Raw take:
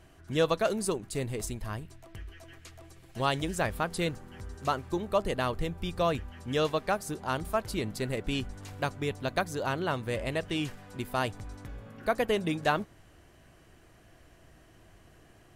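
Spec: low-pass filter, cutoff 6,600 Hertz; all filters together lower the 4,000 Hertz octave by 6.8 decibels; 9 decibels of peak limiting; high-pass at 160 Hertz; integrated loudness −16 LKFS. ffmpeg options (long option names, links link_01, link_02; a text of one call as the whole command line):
ffmpeg -i in.wav -af "highpass=160,lowpass=6600,equalizer=frequency=4000:width_type=o:gain=-9,volume=19dB,alimiter=limit=-2.5dB:level=0:latency=1" out.wav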